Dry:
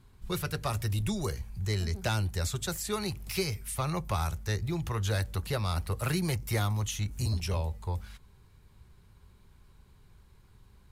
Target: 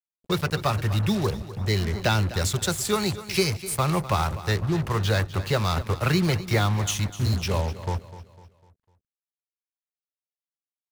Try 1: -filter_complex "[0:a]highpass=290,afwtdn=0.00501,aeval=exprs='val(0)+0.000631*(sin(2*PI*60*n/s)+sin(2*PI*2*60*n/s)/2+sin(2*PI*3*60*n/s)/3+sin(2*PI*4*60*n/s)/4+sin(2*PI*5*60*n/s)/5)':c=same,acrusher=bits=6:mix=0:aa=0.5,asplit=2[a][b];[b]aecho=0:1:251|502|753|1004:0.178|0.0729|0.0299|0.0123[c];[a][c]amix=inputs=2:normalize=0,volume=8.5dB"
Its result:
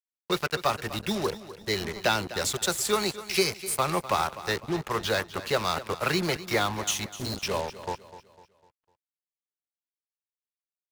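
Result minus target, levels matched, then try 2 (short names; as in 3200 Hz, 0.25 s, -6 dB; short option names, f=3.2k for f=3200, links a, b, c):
125 Hz band -10.5 dB
-filter_complex "[0:a]highpass=99,afwtdn=0.00501,aeval=exprs='val(0)+0.000631*(sin(2*PI*60*n/s)+sin(2*PI*2*60*n/s)/2+sin(2*PI*3*60*n/s)/3+sin(2*PI*4*60*n/s)/4+sin(2*PI*5*60*n/s)/5)':c=same,acrusher=bits=6:mix=0:aa=0.5,asplit=2[a][b];[b]aecho=0:1:251|502|753|1004:0.178|0.0729|0.0299|0.0123[c];[a][c]amix=inputs=2:normalize=0,volume=8.5dB"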